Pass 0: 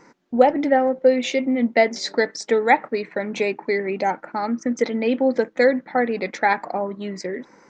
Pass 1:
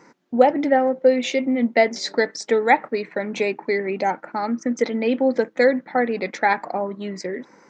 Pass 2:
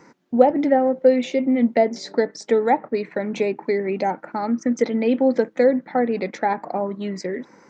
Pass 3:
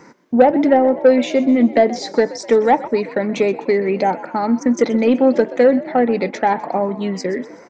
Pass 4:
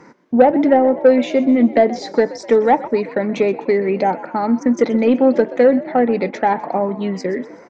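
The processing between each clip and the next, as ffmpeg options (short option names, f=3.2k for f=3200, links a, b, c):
-af "highpass=82"
-filter_complex "[0:a]lowshelf=f=210:g=5.5,acrossover=split=1000[a][b];[b]acompressor=threshold=-33dB:ratio=6[c];[a][c]amix=inputs=2:normalize=0"
-filter_complex "[0:a]acontrast=69,asplit=6[a][b][c][d][e][f];[b]adelay=126,afreqshift=58,volume=-17.5dB[g];[c]adelay=252,afreqshift=116,volume=-23dB[h];[d]adelay=378,afreqshift=174,volume=-28.5dB[i];[e]adelay=504,afreqshift=232,volume=-34dB[j];[f]adelay=630,afreqshift=290,volume=-39.6dB[k];[a][g][h][i][j][k]amix=inputs=6:normalize=0,volume=-1dB"
-af "aemphasis=mode=reproduction:type=cd"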